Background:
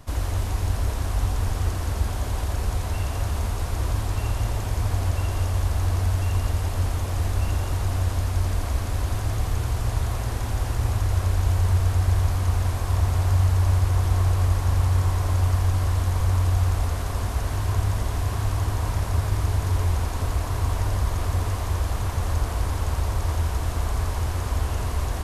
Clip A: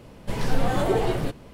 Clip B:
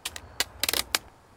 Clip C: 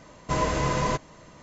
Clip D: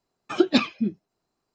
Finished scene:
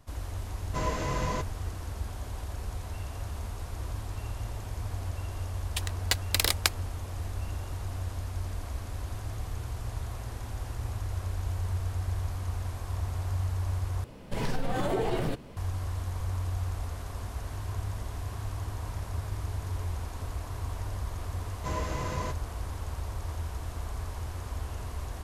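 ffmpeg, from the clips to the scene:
ffmpeg -i bed.wav -i cue0.wav -i cue1.wav -i cue2.wav -filter_complex "[3:a]asplit=2[link_01][link_02];[0:a]volume=-11dB[link_03];[2:a]agate=range=-33dB:threshold=-46dB:ratio=3:release=100:detection=peak[link_04];[1:a]acompressor=threshold=-22dB:ratio=6:attack=3.2:release=140:knee=1:detection=peak[link_05];[link_03]asplit=2[link_06][link_07];[link_06]atrim=end=14.044[link_08];[link_05]atrim=end=1.53,asetpts=PTS-STARTPTS,volume=-1.5dB[link_09];[link_07]atrim=start=15.566[link_10];[link_01]atrim=end=1.42,asetpts=PTS-STARTPTS,volume=-6.5dB,afade=type=in:duration=0.004:curve=hsin,afade=type=out:start_time=1.416:duration=0.004:curve=hsin,adelay=450[link_11];[link_04]atrim=end=1.36,asetpts=PTS-STARTPTS,volume=-0.5dB,afade=type=in:duration=0.004:curve=hsin,afade=type=out:start_time=1.356:duration=0.004:curve=hsin,adelay=5710[link_12];[link_02]atrim=end=1.42,asetpts=PTS-STARTPTS,volume=-9.5dB,afade=type=in:duration=0.004:curve=hsin,afade=type=out:start_time=1.416:duration=0.004:curve=hsin,adelay=21350[link_13];[link_08][link_09]acrossfade=duration=0.004:curve1=hsin:curve2=hsin[link_14];[link_14][link_10]acrossfade=duration=0.004:curve1=hsin:curve2=hsin[link_15];[link_15][link_11][link_12][link_13]amix=inputs=4:normalize=0" out.wav

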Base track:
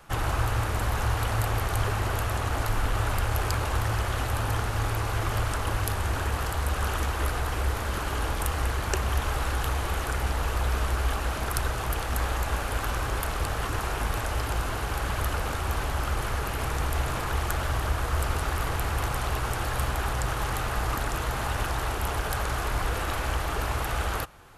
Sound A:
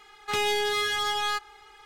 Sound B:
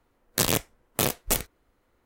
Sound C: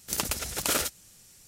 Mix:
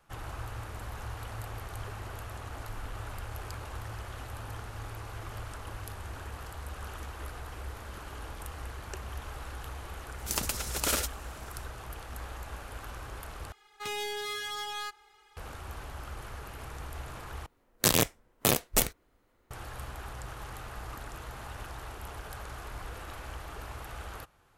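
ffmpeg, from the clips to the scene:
ffmpeg -i bed.wav -i cue0.wav -i cue1.wav -i cue2.wav -filter_complex "[0:a]volume=-13.5dB[link_01];[1:a]highshelf=frequency=7900:gain=7.5[link_02];[link_01]asplit=3[link_03][link_04][link_05];[link_03]atrim=end=13.524[link_06];[link_02]atrim=end=1.85,asetpts=PTS-STARTPTS,volume=-10dB[link_07];[link_04]atrim=start=15.366:end=17.464[link_08];[2:a]atrim=end=2.05,asetpts=PTS-STARTPTS,volume=-0.5dB[link_09];[link_05]atrim=start=19.506[link_10];[3:a]atrim=end=1.47,asetpts=PTS-STARTPTS,volume=-2.5dB,afade=type=in:duration=0.004:curve=hsin,afade=type=out:start_time=1.466:duration=0.004:curve=hsin,adelay=448938S[link_11];[link_06][link_07]acrossfade=duration=0.004:curve1=hsin:curve2=hsin[link_12];[link_12][link_08]acrossfade=duration=0.004:curve1=hsin:curve2=hsin[link_13];[link_13][link_09]acrossfade=duration=0.004:curve1=hsin:curve2=hsin[link_14];[link_14][link_10]acrossfade=duration=0.004:curve1=hsin:curve2=hsin[link_15];[link_15][link_11]amix=inputs=2:normalize=0" out.wav

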